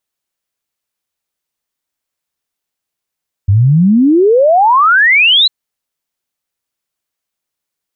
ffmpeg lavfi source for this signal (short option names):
-f lavfi -i "aevalsrc='0.562*clip(min(t,2-t)/0.01,0,1)*sin(2*PI*93*2/log(4100/93)*(exp(log(4100/93)*t/2)-1))':d=2:s=44100"